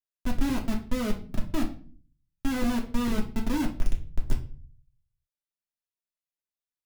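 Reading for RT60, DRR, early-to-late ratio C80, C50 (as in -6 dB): 0.40 s, -1.5 dB, 16.0 dB, 11.0 dB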